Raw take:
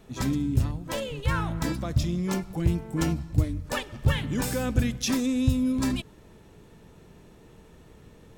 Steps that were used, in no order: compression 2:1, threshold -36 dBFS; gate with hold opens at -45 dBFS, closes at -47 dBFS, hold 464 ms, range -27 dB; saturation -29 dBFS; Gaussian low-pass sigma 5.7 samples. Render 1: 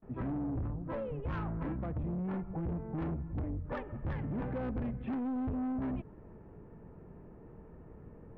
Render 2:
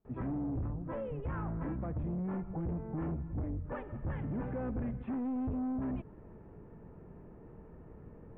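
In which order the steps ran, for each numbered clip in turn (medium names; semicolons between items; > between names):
gate with hold > Gaussian low-pass > saturation > compression; saturation > compression > Gaussian low-pass > gate with hold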